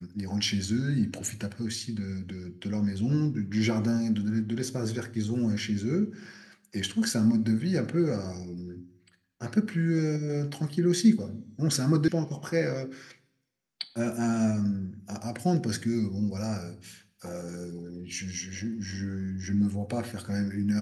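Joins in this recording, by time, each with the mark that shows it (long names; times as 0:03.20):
0:12.08: cut off before it has died away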